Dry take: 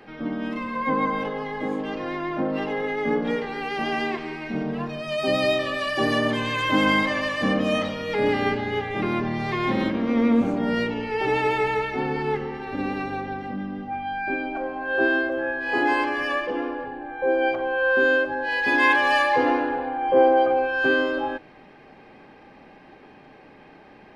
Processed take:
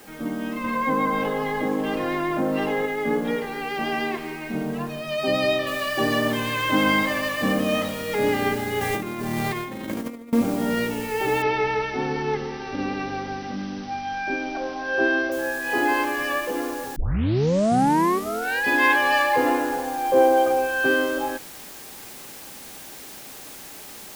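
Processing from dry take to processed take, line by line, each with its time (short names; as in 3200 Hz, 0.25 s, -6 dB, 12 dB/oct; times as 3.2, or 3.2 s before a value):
0.64–2.86 fast leveller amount 50%
5.67 noise floor step -51 dB -41 dB
8.81–10.33 negative-ratio compressor -28 dBFS, ratio -0.5
11.42–15.32 brick-wall FIR low-pass 6100 Hz
16.96 tape start 1.68 s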